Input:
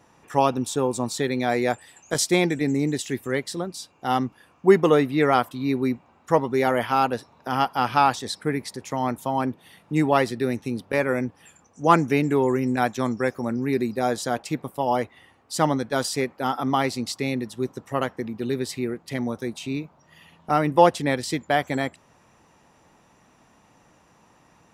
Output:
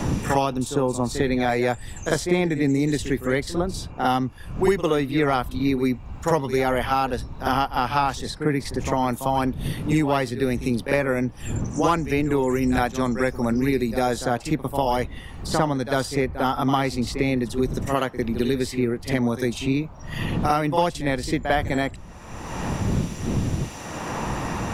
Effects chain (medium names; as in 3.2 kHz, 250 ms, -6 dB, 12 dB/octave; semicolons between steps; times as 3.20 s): wind noise 82 Hz -35 dBFS; pre-echo 51 ms -12 dB; three bands compressed up and down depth 100%